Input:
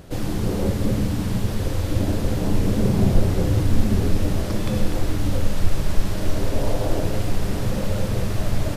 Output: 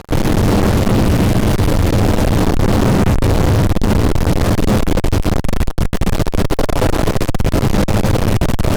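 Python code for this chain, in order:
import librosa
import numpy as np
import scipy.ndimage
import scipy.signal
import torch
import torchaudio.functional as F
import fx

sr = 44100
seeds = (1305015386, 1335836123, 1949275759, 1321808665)

y = fx.tilt_shelf(x, sr, db=4.5, hz=930.0)
y = fx.fuzz(y, sr, gain_db=33.0, gate_db=-34.0)
y = y * librosa.db_to_amplitude(3.0)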